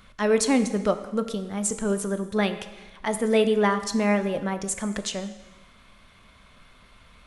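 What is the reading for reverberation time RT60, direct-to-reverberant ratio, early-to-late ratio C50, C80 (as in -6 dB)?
1.2 s, 9.0 dB, 11.5 dB, 13.0 dB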